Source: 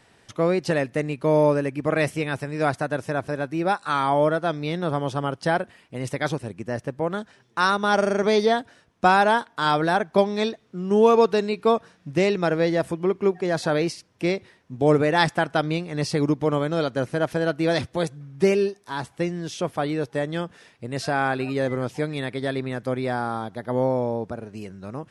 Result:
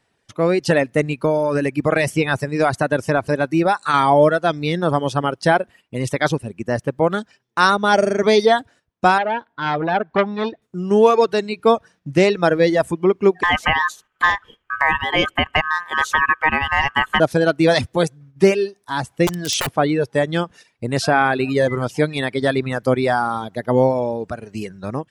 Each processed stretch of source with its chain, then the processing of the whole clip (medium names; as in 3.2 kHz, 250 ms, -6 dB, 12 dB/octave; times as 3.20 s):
1.18–3.94 s: band-stop 3.2 kHz, Q 15 + compression, threshold -20 dBFS
9.18–10.62 s: distance through air 270 m + band-stop 1.2 kHz, Q 15 + transformer saturation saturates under 1.5 kHz
13.43–17.20 s: resonant high shelf 2.1 kHz -7 dB, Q 3 + ring modulator 1.4 kHz + three bands compressed up and down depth 70%
19.27–19.69 s: bass shelf 360 Hz -2.5 dB + integer overflow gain 24.5 dB + level flattener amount 100%
whole clip: reverb removal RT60 1.2 s; gate -50 dBFS, range -9 dB; level rider; trim -1 dB